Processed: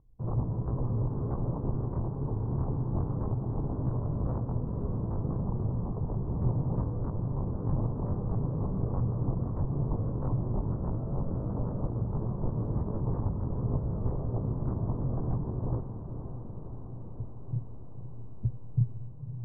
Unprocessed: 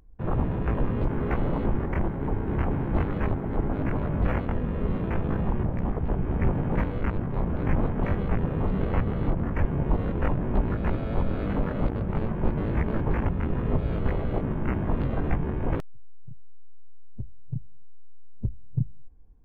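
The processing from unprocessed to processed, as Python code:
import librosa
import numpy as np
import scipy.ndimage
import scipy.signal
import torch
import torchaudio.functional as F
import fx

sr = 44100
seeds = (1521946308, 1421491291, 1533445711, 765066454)

y = scipy.signal.sosfilt(scipy.signal.cheby1(4, 1.0, 1100.0, 'lowpass', fs=sr, output='sos'), x)
y = fx.peak_eq(y, sr, hz=120.0, db=12.0, octaves=0.54)
y = fx.echo_diffused(y, sr, ms=531, feedback_pct=73, wet_db=-9.5)
y = F.gain(torch.from_numpy(y), -8.5).numpy()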